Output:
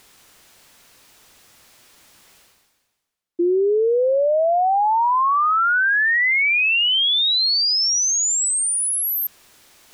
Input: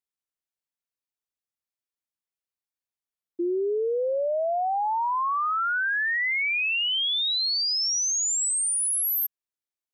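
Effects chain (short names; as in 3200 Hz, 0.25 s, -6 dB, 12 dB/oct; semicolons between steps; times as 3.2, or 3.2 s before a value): high shelf 9500 Hz -7.5 dB; reverse; upward compressor, threshold -32 dBFS; reverse; gain +8 dB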